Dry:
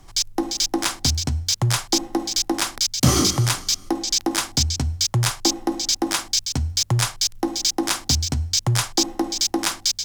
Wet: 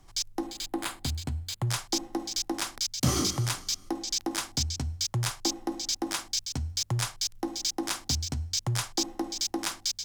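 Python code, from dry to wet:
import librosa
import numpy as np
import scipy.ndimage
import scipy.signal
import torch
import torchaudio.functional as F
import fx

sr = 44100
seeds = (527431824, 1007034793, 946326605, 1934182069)

y = fx.peak_eq(x, sr, hz=5700.0, db=-14.5, octaves=0.4, at=(0.47, 1.67))
y = y * 10.0 ** (-9.0 / 20.0)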